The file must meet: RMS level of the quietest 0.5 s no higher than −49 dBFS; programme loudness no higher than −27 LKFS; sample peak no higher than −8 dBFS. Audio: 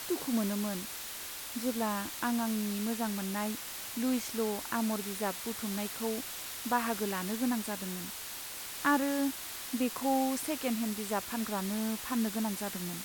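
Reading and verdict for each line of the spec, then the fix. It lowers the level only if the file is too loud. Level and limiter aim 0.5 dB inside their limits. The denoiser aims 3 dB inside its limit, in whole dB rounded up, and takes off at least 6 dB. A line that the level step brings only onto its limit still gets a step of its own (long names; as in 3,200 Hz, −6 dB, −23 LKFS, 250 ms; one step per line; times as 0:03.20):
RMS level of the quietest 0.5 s −42 dBFS: out of spec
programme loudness −33.5 LKFS: in spec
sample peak −15.5 dBFS: in spec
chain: broadband denoise 10 dB, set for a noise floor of −42 dBFS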